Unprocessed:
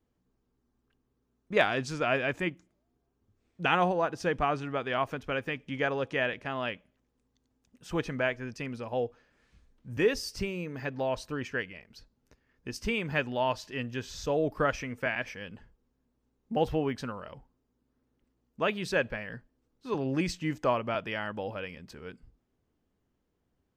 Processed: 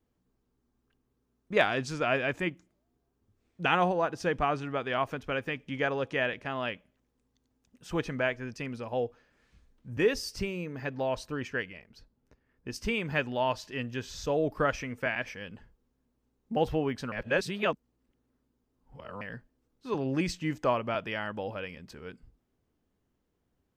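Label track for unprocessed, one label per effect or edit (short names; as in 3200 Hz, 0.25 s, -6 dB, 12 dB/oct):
9.900000	12.700000	mismatched tape noise reduction decoder only
17.120000	19.210000	reverse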